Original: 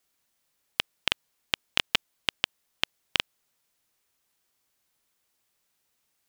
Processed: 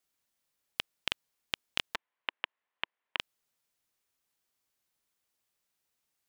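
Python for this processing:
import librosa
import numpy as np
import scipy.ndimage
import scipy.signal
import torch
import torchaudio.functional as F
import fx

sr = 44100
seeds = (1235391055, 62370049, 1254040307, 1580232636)

y = fx.cabinet(x, sr, low_hz=330.0, low_slope=12, high_hz=2900.0, hz=(340.0, 1000.0, 1800.0), db=(-4, 6, 4), at=(1.94, 3.18), fade=0.02)
y = y * librosa.db_to_amplitude(-7.0)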